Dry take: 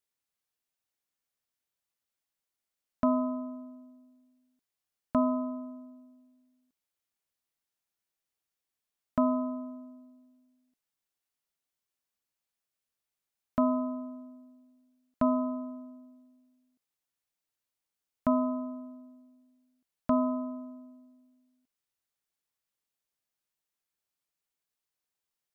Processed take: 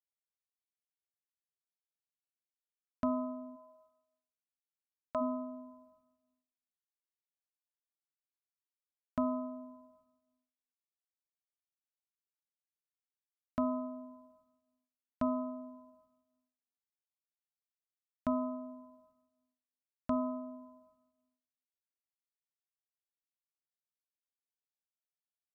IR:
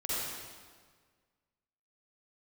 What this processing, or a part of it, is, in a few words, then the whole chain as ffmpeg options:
compressed reverb return: -filter_complex "[0:a]asplit=2[link_01][link_02];[1:a]atrim=start_sample=2205[link_03];[link_02][link_03]afir=irnorm=-1:irlink=0,acompressor=threshold=-28dB:ratio=6,volume=-18.5dB[link_04];[link_01][link_04]amix=inputs=2:normalize=0,asplit=3[link_05][link_06][link_07];[link_05]afade=type=out:start_time=3.55:duration=0.02[link_08];[link_06]lowshelf=frequency=340:width_type=q:width=1.5:gain=-10,afade=type=in:start_time=3.55:duration=0.02,afade=type=out:start_time=5.2:duration=0.02[link_09];[link_07]afade=type=in:start_time=5.2:duration=0.02[link_10];[link_08][link_09][link_10]amix=inputs=3:normalize=0,agate=range=-33dB:threshold=-59dB:ratio=3:detection=peak,equalizer=frequency=73:width_type=o:width=0.33:gain=8.5,volume=-7dB"

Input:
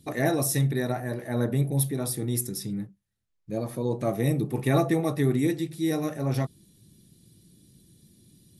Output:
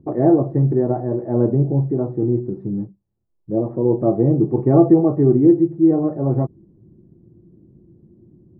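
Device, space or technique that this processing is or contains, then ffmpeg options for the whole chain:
under water: -af "lowpass=frequency=930:width=0.5412,lowpass=frequency=930:width=1.3066,equalizer=frequency=350:width_type=o:width=0.29:gain=10,volume=7dB"

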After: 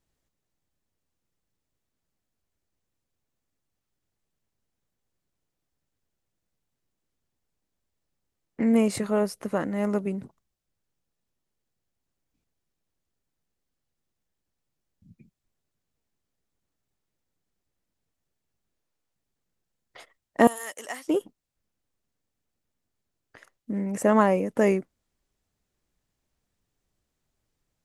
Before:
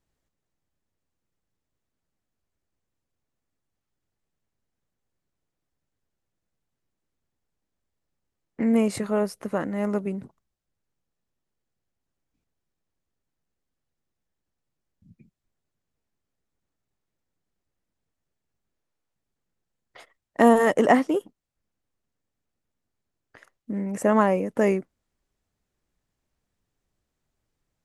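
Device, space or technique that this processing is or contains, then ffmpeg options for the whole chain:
exciter from parts: -filter_complex "[0:a]asplit=2[link_01][link_02];[link_02]highpass=2100,asoftclip=type=tanh:threshold=-35dB,volume=-10dB[link_03];[link_01][link_03]amix=inputs=2:normalize=0,asettb=1/sr,asplit=3[link_04][link_05][link_06];[link_04]atrim=end=20.474[link_07];[link_05]atrim=start=20.47:end=21.08,asetpts=PTS-STARTPTS,afade=type=in:duration=0.004:curve=qsin,afade=type=out:start_time=0.606:duration=0.004:curve=qsin,aderivative[link_08];[link_06]atrim=start=21.076[link_09];[link_07][link_08]acrossfade=duration=0.004:curve1=hsin:curve2=qsin[link_10];[link_10][link_09]acrossfade=duration=0.004:curve1=qsin:curve2=hsin"

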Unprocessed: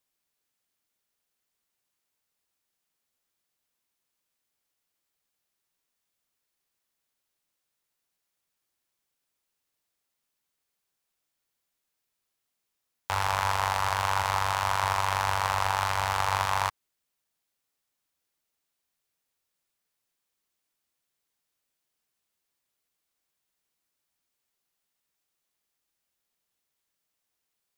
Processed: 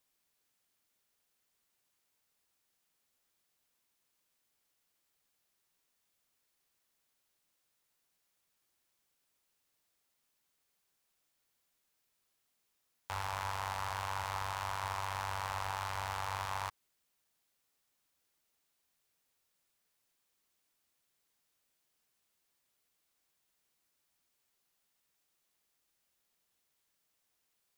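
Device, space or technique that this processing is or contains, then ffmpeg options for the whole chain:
de-esser from a sidechain: -filter_complex "[0:a]asplit=2[link_01][link_02];[link_02]highpass=frequency=4800:poles=1,apad=whole_len=1225034[link_03];[link_01][link_03]sidechaincompress=threshold=-47dB:ratio=5:attack=3.9:release=25,volume=2dB"

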